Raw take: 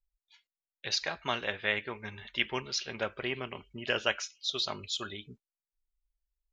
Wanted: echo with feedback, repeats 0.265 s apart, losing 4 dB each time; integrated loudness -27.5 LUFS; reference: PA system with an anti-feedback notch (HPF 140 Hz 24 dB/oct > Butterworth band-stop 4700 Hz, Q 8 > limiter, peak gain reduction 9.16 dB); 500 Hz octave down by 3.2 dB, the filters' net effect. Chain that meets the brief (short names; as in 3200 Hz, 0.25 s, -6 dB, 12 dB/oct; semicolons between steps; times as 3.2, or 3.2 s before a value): HPF 140 Hz 24 dB/oct; Butterworth band-stop 4700 Hz, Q 8; bell 500 Hz -4 dB; feedback echo 0.265 s, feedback 63%, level -4 dB; gain +7 dB; limiter -14 dBFS